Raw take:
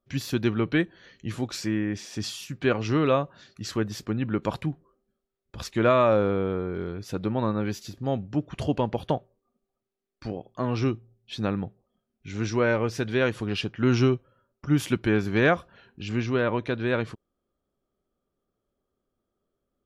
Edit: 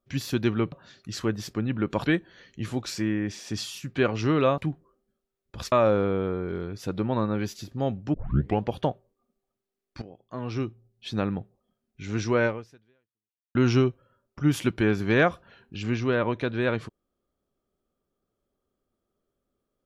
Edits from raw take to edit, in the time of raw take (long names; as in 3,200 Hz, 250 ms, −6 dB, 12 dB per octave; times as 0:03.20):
0:03.24–0:04.58: move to 0:00.72
0:05.72–0:05.98: remove
0:08.40: tape start 0.49 s
0:10.28–0:11.41: fade in, from −14 dB
0:12.72–0:13.81: fade out exponential